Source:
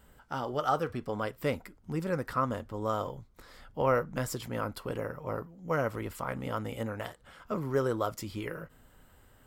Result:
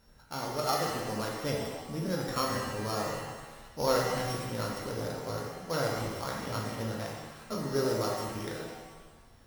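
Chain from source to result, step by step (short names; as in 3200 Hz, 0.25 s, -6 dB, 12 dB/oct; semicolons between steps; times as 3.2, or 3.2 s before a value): sample sorter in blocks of 8 samples; shimmer reverb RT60 1.3 s, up +7 st, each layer -8 dB, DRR -1.5 dB; gain -4 dB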